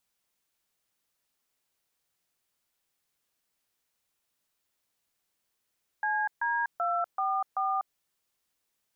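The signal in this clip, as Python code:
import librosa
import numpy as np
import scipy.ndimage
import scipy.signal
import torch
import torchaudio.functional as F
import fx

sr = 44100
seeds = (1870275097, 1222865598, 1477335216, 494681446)

y = fx.dtmf(sr, digits='CD244', tone_ms=245, gap_ms=139, level_db=-28.5)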